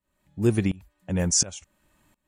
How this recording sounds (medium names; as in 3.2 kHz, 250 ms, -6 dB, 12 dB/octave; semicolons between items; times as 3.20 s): tremolo saw up 1.4 Hz, depth 95%